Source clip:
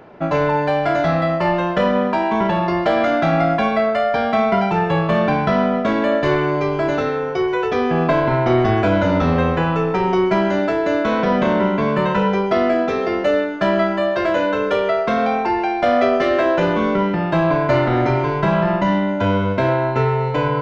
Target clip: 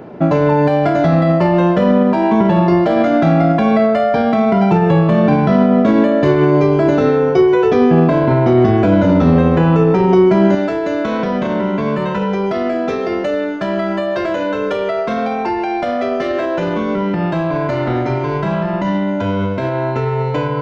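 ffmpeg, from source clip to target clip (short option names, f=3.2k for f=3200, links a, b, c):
-af "highshelf=f=4.6k:g=7,alimiter=limit=-13dB:level=0:latency=1:release=113,asetnsamples=n=441:p=0,asendcmd='10.55 equalizer g 5',equalizer=f=220:w=0.36:g=13"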